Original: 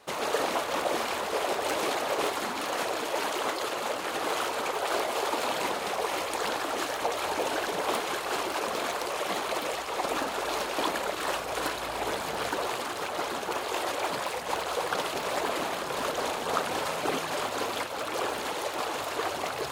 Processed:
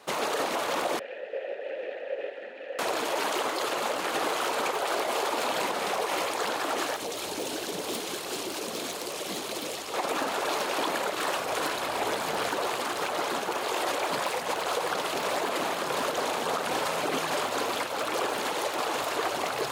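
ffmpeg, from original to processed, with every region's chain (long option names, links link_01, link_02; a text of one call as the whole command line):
ffmpeg -i in.wav -filter_complex "[0:a]asettb=1/sr,asplit=3[link_01][link_02][link_03];[link_01]atrim=end=0.994[link_04];[link_02]atrim=start=0.99:end=2.79,asetpts=PTS-STARTPTS,afade=type=in:duration=0.004:curve=qsin,afade=type=out:start_time=1.796:duration=0.004:curve=qsin,acrossover=split=3500[link_05][link_06];[link_06]acompressor=threshold=-53dB:ratio=4:attack=1:release=60[link_07];[link_05][link_07]amix=inputs=2:normalize=0,asplit=3[link_08][link_09][link_10];[link_08]bandpass=frequency=530:width_type=q:width=8,volume=0dB[link_11];[link_09]bandpass=frequency=1840:width_type=q:width=8,volume=-6dB[link_12];[link_10]bandpass=frequency=2480:width_type=q:width=8,volume=-9dB[link_13];[link_11][link_12][link_13]amix=inputs=3:normalize=0[link_14];[link_03]atrim=start=2.786[link_15];[link_04][link_14]acrossfade=duration=0.004:curve1=hsin:curve2=qsin[link_16];[link_16][link_15]acrossfade=duration=0.004:curve1=qsin:curve2=hsin,asettb=1/sr,asplit=3[link_17][link_18][link_19];[link_17]atrim=end=6.964[link_20];[link_18]atrim=start=6.96:end=9.94,asetpts=PTS-STARTPTS,afade=type=in:duration=0.004:curve=qsin,afade=type=out:start_time=2.976:duration=0.004:curve=qsin,acrossover=split=420|3000[link_21][link_22][link_23];[link_22]acompressor=threshold=-44dB:ratio=4:attack=3.2:release=140:knee=2.83:detection=peak[link_24];[link_21][link_24][link_23]amix=inputs=3:normalize=0,asoftclip=type=hard:threshold=-29dB[link_25];[link_19]atrim=start=9.936[link_26];[link_20][link_25]acrossfade=duration=0.004:curve1=hsin:curve2=qsin[link_27];[link_27][link_26]acrossfade=duration=0.004:curve1=qsin:curve2=hsin,highpass=120,alimiter=limit=-21.5dB:level=0:latency=1:release=77,volume=3dB" out.wav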